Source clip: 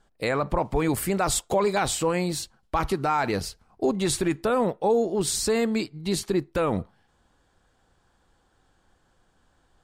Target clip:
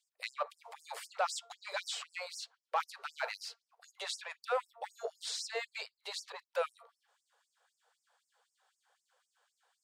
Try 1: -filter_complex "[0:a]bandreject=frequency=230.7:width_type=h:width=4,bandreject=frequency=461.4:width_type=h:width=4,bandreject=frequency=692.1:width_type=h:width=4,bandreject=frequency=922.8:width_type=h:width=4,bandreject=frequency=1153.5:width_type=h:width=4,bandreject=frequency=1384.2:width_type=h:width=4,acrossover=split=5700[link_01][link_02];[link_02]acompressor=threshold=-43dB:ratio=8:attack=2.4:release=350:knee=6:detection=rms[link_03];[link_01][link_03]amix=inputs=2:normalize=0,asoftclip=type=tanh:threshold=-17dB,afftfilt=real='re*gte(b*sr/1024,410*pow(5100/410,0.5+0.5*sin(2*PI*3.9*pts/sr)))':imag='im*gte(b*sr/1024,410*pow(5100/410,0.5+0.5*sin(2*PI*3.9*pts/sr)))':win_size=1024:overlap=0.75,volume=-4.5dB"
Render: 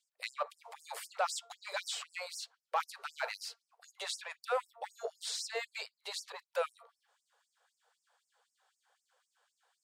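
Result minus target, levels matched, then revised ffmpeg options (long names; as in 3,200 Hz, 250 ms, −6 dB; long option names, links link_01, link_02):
downward compressor: peak gain reduction −6.5 dB
-filter_complex "[0:a]bandreject=frequency=230.7:width_type=h:width=4,bandreject=frequency=461.4:width_type=h:width=4,bandreject=frequency=692.1:width_type=h:width=4,bandreject=frequency=922.8:width_type=h:width=4,bandreject=frequency=1153.5:width_type=h:width=4,bandreject=frequency=1384.2:width_type=h:width=4,acrossover=split=5700[link_01][link_02];[link_02]acompressor=threshold=-50.5dB:ratio=8:attack=2.4:release=350:knee=6:detection=rms[link_03];[link_01][link_03]amix=inputs=2:normalize=0,asoftclip=type=tanh:threshold=-17dB,afftfilt=real='re*gte(b*sr/1024,410*pow(5100/410,0.5+0.5*sin(2*PI*3.9*pts/sr)))':imag='im*gte(b*sr/1024,410*pow(5100/410,0.5+0.5*sin(2*PI*3.9*pts/sr)))':win_size=1024:overlap=0.75,volume=-4.5dB"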